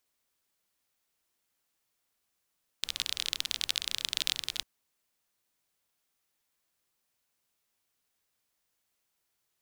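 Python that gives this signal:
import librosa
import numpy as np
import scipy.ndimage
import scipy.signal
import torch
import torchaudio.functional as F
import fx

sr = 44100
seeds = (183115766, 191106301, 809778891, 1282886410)

y = fx.rain(sr, seeds[0], length_s=1.8, drops_per_s=29.0, hz=3600.0, bed_db=-20)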